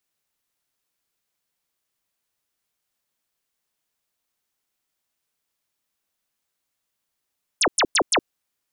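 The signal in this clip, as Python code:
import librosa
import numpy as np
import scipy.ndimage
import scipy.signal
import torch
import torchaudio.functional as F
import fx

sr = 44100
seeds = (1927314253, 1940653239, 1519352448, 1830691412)

y = fx.laser_zaps(sr, level_db=-15.5, start_hz=11000.0, end_hz=250.0, length_s=0.07, wave='sine', shots=4, gap_s=0.1)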